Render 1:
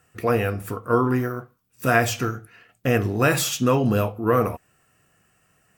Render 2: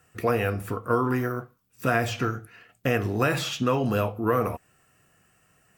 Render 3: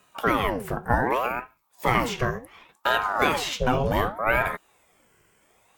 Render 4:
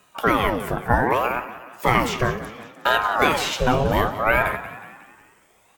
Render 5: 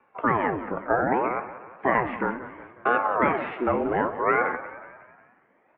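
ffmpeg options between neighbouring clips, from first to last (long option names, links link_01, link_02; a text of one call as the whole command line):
ffmpeg -i in.wav -filter_complex "[0:a]acrossover=split=530|4500[link_01][link_02][link_03];[link_01]acompressor=threshold=-24dB:ratio=4[link_04];[link_02]acompressor=threshold=-23dB:ratio=4[link_05];[link_03]acompressor=threshold=-45dB:ratio=4[link_06];[link_04][link_05][link_06]amix=inputs=3:normalize=0" out.wav
ffmpeg -i in.wav -af "aeval=exprs='val(0)*sin(2*PI*700*n/s+700*0.65/0.67*sin(2*PI*0.67*n/s))':channel_layout=same,volume=4dB" out.wav
ffmpeg -i in.wav -filter_complex "[0:a]asplit=6[link_01][link_02][link_03][link_04][link_05][link_06];[link_02]adelay=182,afreqshift=52,volume=-14dB[link_07];[link_03]adelay=364,afreqshift=104,volume=-20dB[link_08];[link_04]adelay=546,afreqshift=156,volume=-26dB[link_09];[link_05]adelay=728,afreqshift=208,volume=-32.1dB[link_10];[link_06]adelay=910,afreqshift=260,volume=-38.1dB[link_11];[link_01][link_07][link_08][link_09][link_10][link_11]amix=inputs=6:normalize=0,volume=3.5dB" out.wav
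ffmpeg -i in.wav -af "highpass=frequency=350:width_type=q:width=0.5412,highpass=frequency=350:width_type=q:width=1.307,lowpass=frequency=2300:width_type=q:width=0.5176,lowpass=frequency=2300:width_type=q:width=0.7071,lowpass=frequency=2300:width_type=q:width=1.932,afreqshift=-170,volume=-2.5dB" out.wav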